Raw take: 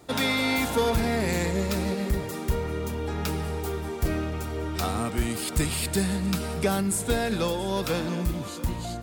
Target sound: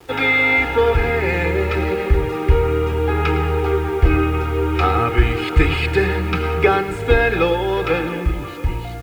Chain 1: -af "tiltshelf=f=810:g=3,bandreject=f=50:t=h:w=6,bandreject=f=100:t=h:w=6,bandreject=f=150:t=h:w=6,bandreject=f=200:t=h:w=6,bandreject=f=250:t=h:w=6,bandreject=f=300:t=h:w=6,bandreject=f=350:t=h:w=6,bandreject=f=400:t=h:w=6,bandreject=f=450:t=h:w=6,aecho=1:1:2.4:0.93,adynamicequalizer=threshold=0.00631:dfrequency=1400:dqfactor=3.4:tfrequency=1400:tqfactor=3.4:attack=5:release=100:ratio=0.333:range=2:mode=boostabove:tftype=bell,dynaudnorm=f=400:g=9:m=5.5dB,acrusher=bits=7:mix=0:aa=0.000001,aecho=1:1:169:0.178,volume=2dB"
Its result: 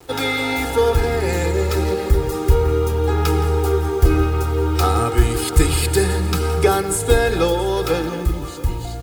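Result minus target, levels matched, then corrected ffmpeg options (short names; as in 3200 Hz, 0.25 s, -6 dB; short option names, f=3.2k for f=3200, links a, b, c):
echo 60 ms late; 2000 Hz band -6.5 dB
-af "tiltshelf=f=810:g=3,bandreject=f=50:t=h:w=6,bandreject=f=100:t=h:w=6,bandreject=f=150:t=h:w=6,bandreject=f=200:t=h:w=6,bandreject=f=250:t=h:w=6,bandreject=f=300:t=h:w=6,bandreject=f=350:t=h:w=6,bandreject=f=400:t=h:w=6,bandreject=f=450:t=h:w=6,aecho=1:1:2.4:0.93,adynamicequalizer=threshold=0.00631:dfrequency=1400:dqfactor=3.4:tfrequency=1400:tqfactor=3.4:attack=5:release=100:ratio=0.333:range=2:mode=boostabove:tftype=bell,lowpass=f=2.4k:t=q:w=2.7,dynaudnorm=f=400:g=9:m=5.5dB,acrusher=bits=7:mix=0:aa=0.000001,aecho=1:1:109:0.178,volume=2dB"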